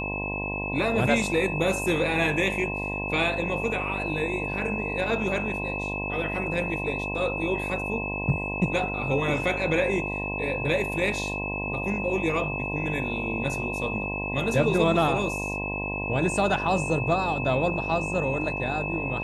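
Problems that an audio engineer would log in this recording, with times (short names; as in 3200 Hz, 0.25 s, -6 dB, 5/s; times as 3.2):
buzz 50 Hz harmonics 21 -33 dBFS
tone 2600 Hz -31 dBFS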